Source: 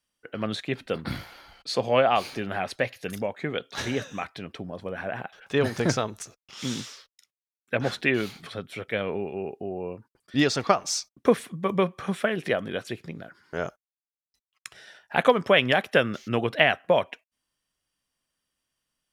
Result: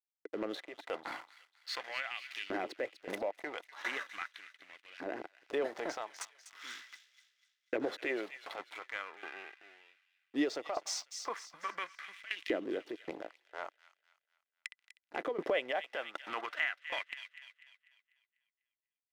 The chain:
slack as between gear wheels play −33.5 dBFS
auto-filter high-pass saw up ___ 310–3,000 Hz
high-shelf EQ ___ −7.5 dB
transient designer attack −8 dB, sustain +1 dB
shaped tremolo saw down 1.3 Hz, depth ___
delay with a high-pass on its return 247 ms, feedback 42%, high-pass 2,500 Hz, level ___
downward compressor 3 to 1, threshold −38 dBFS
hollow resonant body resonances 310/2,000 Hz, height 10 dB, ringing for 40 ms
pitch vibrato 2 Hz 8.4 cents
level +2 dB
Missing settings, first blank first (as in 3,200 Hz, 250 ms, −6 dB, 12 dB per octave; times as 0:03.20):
0.4 Hz, 6,700 Hz, 90%, −12 dB